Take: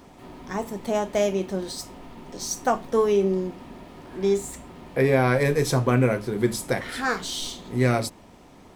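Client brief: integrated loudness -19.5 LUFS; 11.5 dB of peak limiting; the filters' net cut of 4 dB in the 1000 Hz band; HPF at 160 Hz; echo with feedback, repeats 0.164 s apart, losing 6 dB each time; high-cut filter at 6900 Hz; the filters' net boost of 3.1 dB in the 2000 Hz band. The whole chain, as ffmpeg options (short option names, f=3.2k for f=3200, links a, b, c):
-af "highpass=160,lowpass=6.9k,equalizer=f=1k:t=o:g=-7.5,equalizer=f=2k:t=o:g=6.5,alimiter=limit=-18.5dB:level=0:latency=1,aecho=1:1:164|328|492|656|820|984:0.501|0.251|0.125|0.0626|0.0313|0.0157,volume=9.5dB"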